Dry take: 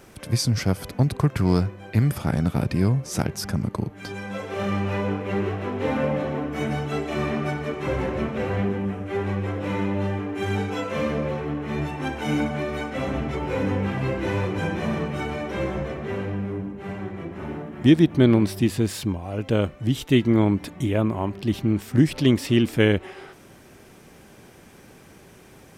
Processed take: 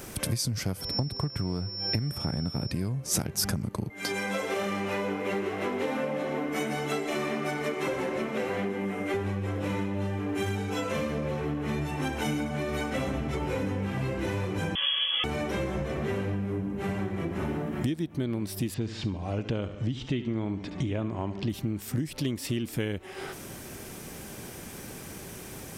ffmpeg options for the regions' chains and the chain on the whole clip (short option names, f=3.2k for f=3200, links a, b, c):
-filter_complex "[0:a]asettb=1/sr,asplit=3[a][b][c];[a]atrim=end=0.814[d];[b]atrim=start=0.81:end=2.71,asetpts=PTS-STARTPTS,afade=t=in:d=0.004:c=qsin,afade=t=out:st=1.896:d=0.004:c=qsin,highshelf=f=2.9k:g=-9,aeval=exprs='val(0)+0.0178*sin(2*PI*5400*n/s)':c=same[e];[c]atrim=start=2.706[f];[d][e]acrossfade=d=0.004:c1=hsin:c2=qsin[g];[g][f]acrossfade=d=0.004:c1=qsin:c2=hsin,asettb=1/sr,asplit=3[h][i][j];[h]atrim=end=3.904[k];[i]atrim=start=3.9:end=9.14,asetpts=PTS-STARTPTS,afade=t=in:d=0.004:c=qsin,afade=t=out:st=5.236:d=0.004:c=qsin,highpass=250,aeval=exprs='val(0)+0.00631*sin(2*PI*2100*n/s)':c=same[l];[j]atrim=start=9.136[m];[k][l]acrossfade=d=0.004:c1=hsin:c2=qsin[n];[n][m]acrossfade=d=0.004:c1=qsin:c2=hsin,asettb=1/sr,asplit=3[o][p][q];[o]atrim=end=14.754[r];[p]atrim=start=14.75:end=15.24,asetpts=PTS-STARTPTS,afade=t=in:d=0.004:c=qsin,afade=t=out:st=0.486:d=0.004:c=qsin,bandreject=f=1.2k:w=23,lowpass=f=3k:t=q:w=0.5098,lowpass=f=3k:t=q:w=0.6013,lowpass=f=3k:t=q:w=0.9,lowpass=f=3k:t=q:w=2.563,afreqshift=-3500[s];[q]atrim=start=15.236[t];[r][s]acrossfade=d=0.004:c1=hsin:c2=qsin[u];[u][t]acrossfade=d=0.004:c1=qsin:c2=hsin,asettb=1/sr,asplit=3[v][w][x];[v]atrim=end=18.744[y];[w]atrim=start=18.74:end=21.5,asetpts=PTS-STARTPTS,afade=t=in:d=0.004:c=qsin,afade=t=out:st=2.756:d=0.004:c=qsin,acrossover=split=4400[z][aa];[aa]acompressor=threshold=-53dB:ratio=4:attack=1:release=60[ab];[z][ab]amix=inputs=2:normalize=0,lowpass=f=6.9k:w=0.5412,lowpass=f=6.9k:w=1.3066,aecho=1:1:71|142|213|284:0.224|0.0918|0.0376|0.0154,atrim=end_sample=121716[ac];[x]atrim=start=21.496[ad];[y][ac]acrossfade=d=0.004:c1=hsin:c2=qsin[ae];[ae][ad]acrossfade=d=0.004:c1=qsin:c2=hsin,lowshelf=f=340:g=3,acompressor=threshold=-31dB:ratio=12,highshelf=f=5.2k:g=11.5,volume=4dB"